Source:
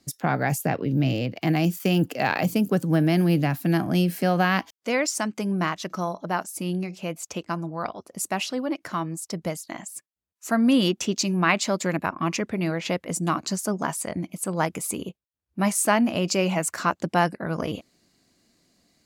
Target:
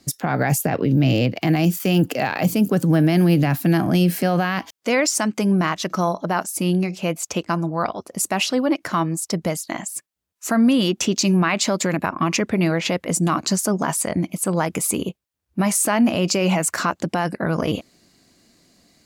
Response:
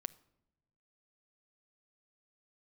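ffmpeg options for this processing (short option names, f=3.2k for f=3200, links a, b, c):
-af "alimiter=level_in=16.5dB:limit=-1dB:release=50:level=0:latency=1,volume=-8.5dB"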